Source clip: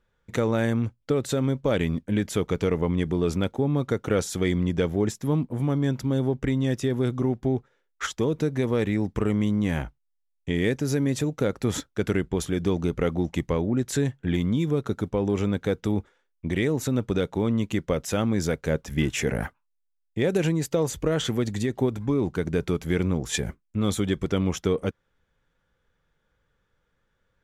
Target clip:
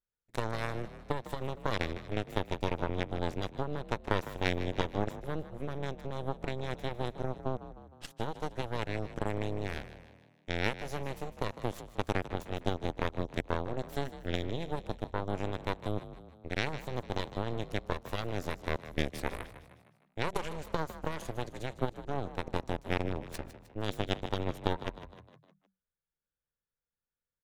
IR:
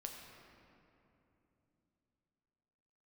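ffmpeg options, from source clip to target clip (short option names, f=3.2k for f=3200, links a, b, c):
-filter_complex "[0:a]asettb=1/sr,asplit=3[a][b][c];[a]atrim=end=22.984[d];[b]atrim=start=22.98:end=23.86,asetpts=PTS-STARTPTS,afade=t=in:d=0.004:c=qsin,afade=t=out:st=0.876:d=0.004:c=qsin,adynamicsmooth=sensitivity=6.5:basefreq=1.9k[e];[c]atrim=start=23.856[f];[d][e]acrossfade=d=0.004:c1=hsin:c2=qsin[g];[g][f]acrossfade=d=0.004:c1=qsin:c2=hsin,aeval=exprs='0.316*(cos(1*acos(clip(val(0)/0.316,-1,1)))-cos(1*PI/2))+0.0708*(cos(2*acos(clip(val(0)/0.316,-1,1)))-cos(2*PI/2))+0.112*(cos(3*acos(clip(val(0)/0.316,-1,1)))-cos(3*PI/2))+0.0141*(cos(6*acos(clip(val(0)/0.316,-1,1)))-cos(6*PI/2))+0.00224*(cos(8*acos(clip(val(0)/0.316,-1,1)))-cos(8*PI/2))':c=same,asplit=6[h][i][j][k][l][m];[i]adelay=154,afreqshift=38,volume=-13.5dB[n];[j]adelay=308,afreqshift=76,volume=-19.5dB[o];[k]adelay=462,afreqshift=114,volume=-25.5dB[p];[l]adelay=616,afreqshift=152,volume=-31.6dB[q];[m]adelay=770,afreqshift=190,volume=-37.6dB[r];[h][n][o][p][q][r]amix=inputs=6:normalize=0,volume=-2dB"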